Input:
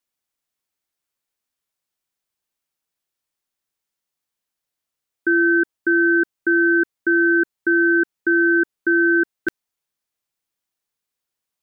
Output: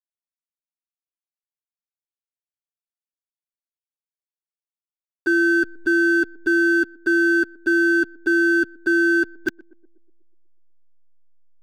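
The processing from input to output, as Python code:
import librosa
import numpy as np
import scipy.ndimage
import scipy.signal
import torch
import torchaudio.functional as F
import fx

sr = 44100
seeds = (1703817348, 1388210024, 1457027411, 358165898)

y = fx.spec_quant(x, sr, step_db=30)
y = fx.backlash(y, sr, play_db=-27.0)
y = fx.echo_banded(y, sr, ms=122, feedback_pct=59, hz=430.0, wet_db=-21.5)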